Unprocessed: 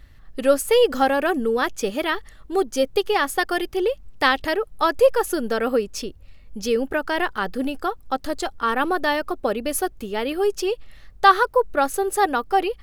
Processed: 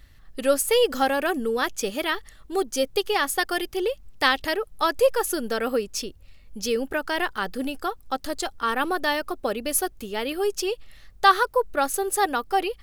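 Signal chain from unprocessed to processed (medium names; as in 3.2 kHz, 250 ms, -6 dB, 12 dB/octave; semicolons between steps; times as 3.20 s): treble shelf 2.8 kHz +7.5 dB; trim -4 dB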